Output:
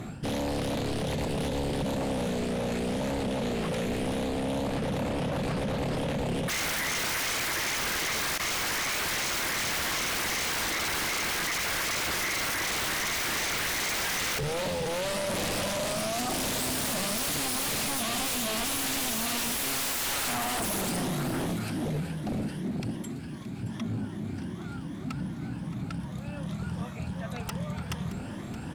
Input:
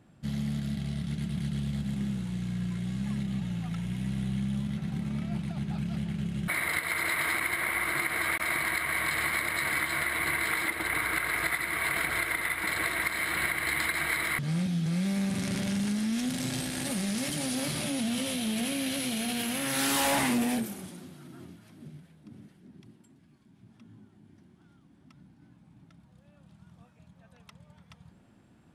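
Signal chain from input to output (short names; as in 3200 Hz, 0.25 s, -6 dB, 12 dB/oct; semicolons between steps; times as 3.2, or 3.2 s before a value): moving spectral ripple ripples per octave 1.2, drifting +2.6 Hz, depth 8 dB; reverse; compressor 6:1, threshold -40 dBFS, peak gain reduction 16.5 dB; reverse; sine folder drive 18 dB, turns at -27 dBFS; echo 0.622 s -14.5 dB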